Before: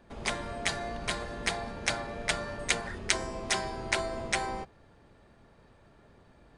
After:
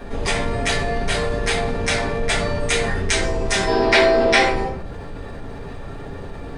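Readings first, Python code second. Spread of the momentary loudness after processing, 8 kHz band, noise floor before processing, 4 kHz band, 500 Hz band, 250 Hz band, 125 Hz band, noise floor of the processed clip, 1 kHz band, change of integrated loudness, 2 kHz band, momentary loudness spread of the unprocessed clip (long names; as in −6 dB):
20 LU, +7.5 dB, −60 dBFS, +10.5 dB, +17.0 dB, +15.0 dB, +16.0 dB, −33 dBFS, +12.5 dB, +13.0 dB, +12.5 dB, 4 LU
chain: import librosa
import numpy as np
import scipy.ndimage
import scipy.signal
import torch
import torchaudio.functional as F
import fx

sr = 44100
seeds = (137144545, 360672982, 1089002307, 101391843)

y = fx.spec_box(x, sr, start_s=3.68, length_s=0.71, low_hz=210.0, high_hz=5800.0, gain_db=12)
y = fx.room_shoebox(y, sr, seeds[0], volume_m3=41.0, walls='mixed', distance_m=1.8)
y = fx.env_flatten(y, sr, amount_pct=50)
y = y * librosa.db_to_amplitude(-6.5)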